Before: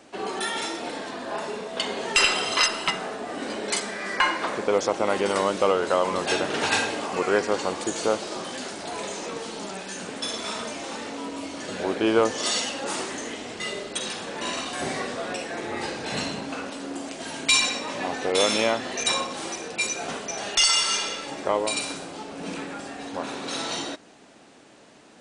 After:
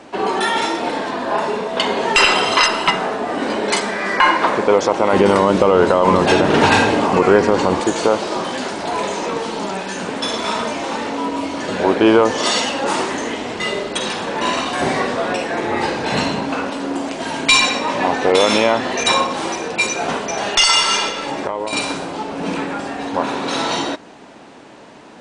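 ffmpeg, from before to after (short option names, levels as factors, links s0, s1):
-filter_complex "[0:a]asettb=1/sr,asplit=3[s0][s1][s2];[s0]atrim=end=5.134[s3];[s1]atrim=start=5.13:end=7.8,asetpts=PTS-STARTPTS,afade=t=in:d=0.004:c=qsin,afade=t=out:st=2.666:d=0.004:c=qsin,lowshelf=f=290:g=10.5[s4];[s2]atrim=start=7.796[s5];[s3][s4]acrossfade=d=0.004:c1=hsin:c2=qsin[s6];[s6][s5]acrossfade=d=0.004:c1=qsin:c2=hsin,asettb=1/sr,asplit=3[s7][s8][s9];[s7]atrim=end=21.094[s10];[s8]atrim=start=21.09:end=21.73,asetpts=PTS-STARTPTS,afade=t=in:d=0.004:c=qsin,afade=t=out:st=0.636:d=0.004:c=qsin,acompressor=threshold=0.0355:ratio=12:attack=3.2:release=140:knee=1:detection=peak[s11];[s9]atrim=start=21.726[s12];[s10][s11]acrossfade=d=0.004:c1=hsin:c2=qsin[s13];[s13][s12]acrossfade=d=0.004:c1=qsin:c2=hsin,lowpass=f=3100:p=1,equalizer=f=950:w=5.5:g=5.5,alimiter=level_in=3.98:limit=0.891:release=50:level=0:latency=1,volume=0.891"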